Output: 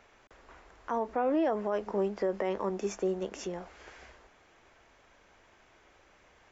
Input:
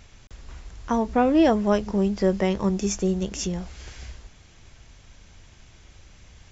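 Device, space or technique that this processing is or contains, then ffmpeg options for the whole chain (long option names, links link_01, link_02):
DJ mixer with the lows and highs turned down: -filter_complex "[0:a]acrossover=split=320 2100:gain=0.0794 1 0.178[link_01][link_02][link_03];[link_01][link_02][link_03]amix=inputs=3:normalize=0,alimiter=limit=-21dB:level=0:latency=1:release=63"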